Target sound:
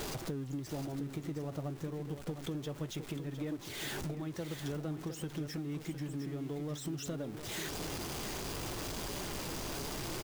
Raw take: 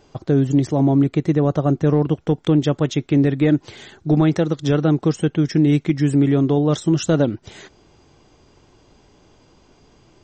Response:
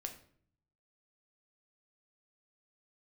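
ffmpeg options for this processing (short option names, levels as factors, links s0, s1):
-filter_complex "[0:a]aeval=exprs='val(0)+0.5*0.0631*sgn(val(0))':c=same,highshelf=f=6100:g=4,acompressor=threshold=0.0355:ratio=6,flanger=delay=4.8:depth=2.4:regen=-67:speed=0.97:shape=triangular,asplit=2[s0][s1];[s1]aecho=0:1:709:0.355[s2];[s0][s2]amix=inputs=2:normalize=0,volume=0.562"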